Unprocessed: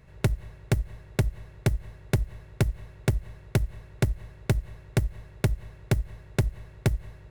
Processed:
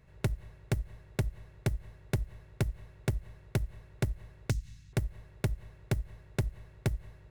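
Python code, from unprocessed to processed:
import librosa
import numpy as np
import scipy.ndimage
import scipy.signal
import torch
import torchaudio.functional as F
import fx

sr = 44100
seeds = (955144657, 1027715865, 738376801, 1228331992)

y = fx.curve_eq(x, sr, hz=(280.0, 410.0, 6400.0, 11000.0), db=(0, -28, 15, 0), at=(4.5, 4.93))
y = y * librosa.db_to_amplitude(-6.5)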